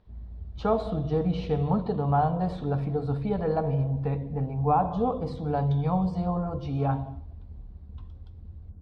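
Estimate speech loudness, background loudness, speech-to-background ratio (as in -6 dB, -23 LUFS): -27.5 LUFS, -45.0 LUFS, 17.5 dB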